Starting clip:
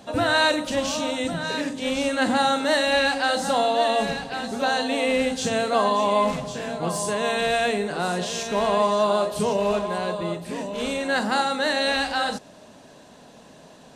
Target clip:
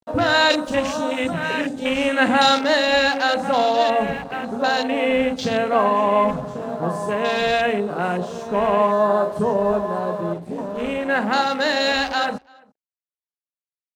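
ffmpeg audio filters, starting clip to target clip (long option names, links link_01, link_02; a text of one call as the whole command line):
ffmpeg -i in.wav -filter_complex "[0:a]afwtdn=0.0282,asettb=1/sr,asplit=3[link_01][link_02][link_03];[link_01]atrim=end=0.504[link_04];[link_02]atrim=start=0.5:end=2.59,asetpts=PTS-STARTPTS,afade=type=in:duration=0.004:curve=qsin,afade=type=out:start_time=2.086:duration=0.004:curve=qsin,highshelf=frequency=2100:gain=9.5[link_05];[link_03]atrim=start=2.586[link_06];[link_04][link_05]acrossfade=duration=0.004:curve1=hsin:curve2=qsin[link_07];[link_07][link_06]acrossfade=duration=0.004:curve1=qsin:curve2=hsin,aeval=exprs='sgn(val(0))*max(abs(val(0))-0.00251,0)':channel_layout=same,asplit=2[link_08][link_09];[link_09]adelay=338.2,volume=-27dB,highshelf=frequency=4000:gain=-7.61[link_10];[link_08][link_10]amix=inputs=2:normalize=0,volume=3.5dB" out.wav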